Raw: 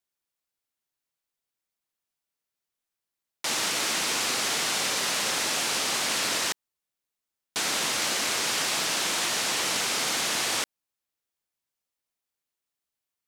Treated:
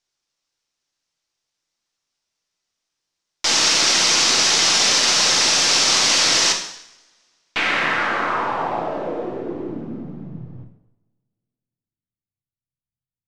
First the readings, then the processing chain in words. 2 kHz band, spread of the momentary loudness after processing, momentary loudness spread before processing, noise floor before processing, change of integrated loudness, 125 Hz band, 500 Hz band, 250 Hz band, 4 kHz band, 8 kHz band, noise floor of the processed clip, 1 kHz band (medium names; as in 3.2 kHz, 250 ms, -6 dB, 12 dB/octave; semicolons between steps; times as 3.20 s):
+7.5 dB, 17 LU, 4 LU, under -85 dBFS, +10.0 dB, +10.5 dB, +8.5 dB, +9.0 dB, +9.5 dB, +8.0 dB, under -85 dBFS, +8.5 dB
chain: partial rectifier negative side -3 dB; low-pass sweep 5.7 kHz -> 130 Hz, 6.74–10.55 s; two-slope reverb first 0.75 s, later 2.4 s, from -28 dB, DRR 2.5 dB; trim +7 dB